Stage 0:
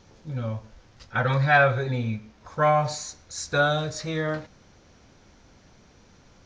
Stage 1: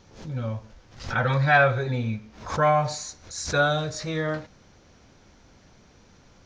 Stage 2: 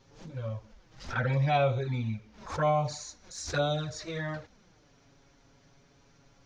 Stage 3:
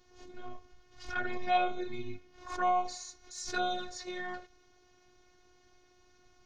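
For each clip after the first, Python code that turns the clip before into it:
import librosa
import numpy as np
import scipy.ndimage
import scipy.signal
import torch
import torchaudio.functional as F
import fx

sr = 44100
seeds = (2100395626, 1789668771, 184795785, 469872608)

y1 = fx.pre_swell(x, sr, db_per_s=110.0)
y2 = fx.env_flanger(y1, sr, rest_ms=7.8, full_db=-18.5)
y2 = y2 * 10.0 ** (-3.5 / 20.0)
y3 = fx.robotise(y2, sr, hz=362.0)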